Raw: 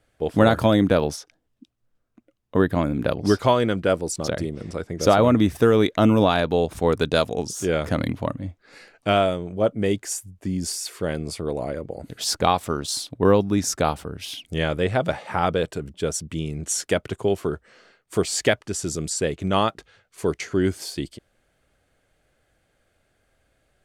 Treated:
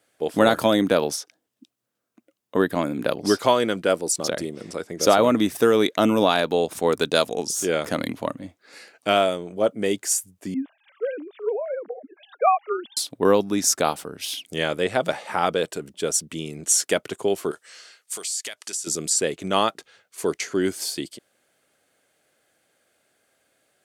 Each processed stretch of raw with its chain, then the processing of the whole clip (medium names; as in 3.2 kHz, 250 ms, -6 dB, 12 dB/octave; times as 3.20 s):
10.54–12.97 s: formants replaced by sine waves + distance through air 360 m + three bands expanded up and down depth 40%
17.51–18.87 s: low-pass 10 kHz + tilt EQ +4.5 dB/octave + compression, threshold -33 dBFS
whole clip: high-pass 230 Hz 12 dB/octave; treble shelf 4.8 kHz +9 dB